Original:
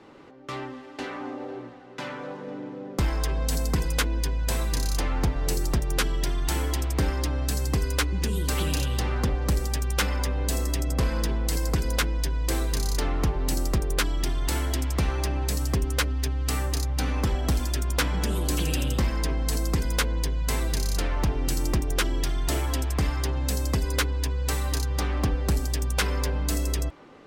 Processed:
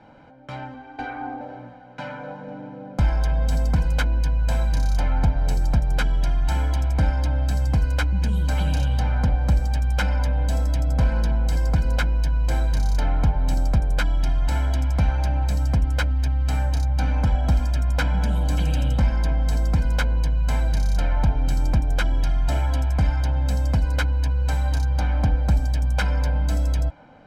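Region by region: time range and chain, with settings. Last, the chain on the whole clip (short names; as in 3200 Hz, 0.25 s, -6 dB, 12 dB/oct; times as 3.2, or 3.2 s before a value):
0.74–1.41 high shelf 3700 Hz -11 dB + comb 2.6 ms, depth 100%
whole clip: LPF 1600 Hz 6 dB/oct; comb 1.3 ms, depth 85%; gain +1 dB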